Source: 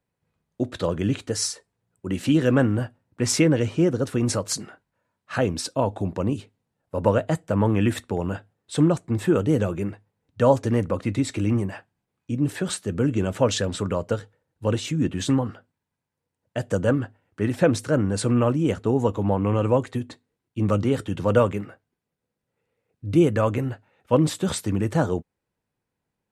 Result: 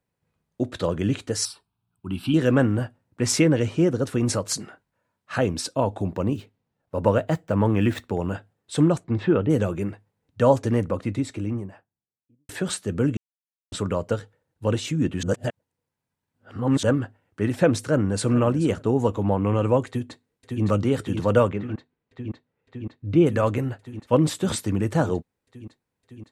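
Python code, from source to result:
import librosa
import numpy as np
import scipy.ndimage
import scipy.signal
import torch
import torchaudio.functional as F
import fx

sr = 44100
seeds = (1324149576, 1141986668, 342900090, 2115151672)

y = fx.fixed_phaser(x, sr, hz=1900.0, stages=6, at=(1.45, 2.34))
y = fx.median_filter(y, sr, points=5, at=(6.07, 8.1))
y = fx.lowpass(y, sr, hz=fx.line((9.03, 5700.0), (9.49, 2900.0)), slope=24, at=(9.03, 9.49), fade=0.02)
y = fx.studio_fade_out(y, sr, start_s=10.58, length_s=1.91)
y = fx.echo_throw(y, sr, start_s=17.77, length_s=0.55, ms=430, feedback_pct=15, wet_db=-14.5)
y = fx.echo_throw(y, sr, start_s=19.87, length_s=0.76, ms=560, feedback_pct=85, wet_db=-4.0)
y = fx.lowpass(y, sr, hz=3300.0, slope=12, at=(21.48, 23.25), fade=0.02)
y = fx.edit(y, sr, fx.silence(start_s=13.17, length_s=0.55),
    fx.reverse_span(start_s=15.23, length_s=1.6), tone=tone)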